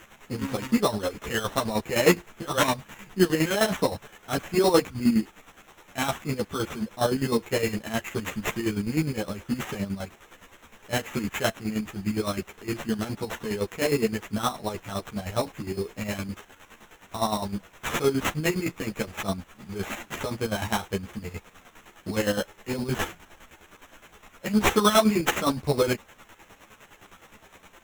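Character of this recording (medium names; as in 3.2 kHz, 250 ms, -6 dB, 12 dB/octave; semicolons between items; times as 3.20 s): a quantiser's noise floor 8-bit, dither triangular; chopped level 9.7 Hz, depth 65%, duty 40%; aliases and images of a low sample rate 4.7 kHz, jitter 0%; a shimmering, thickened sound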